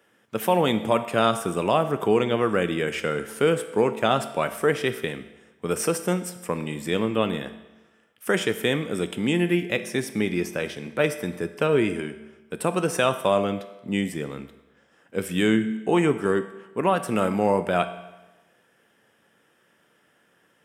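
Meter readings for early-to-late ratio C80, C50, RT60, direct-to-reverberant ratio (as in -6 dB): 14.0 dB, 12.0 dB, 1.1 s, 9.5 dB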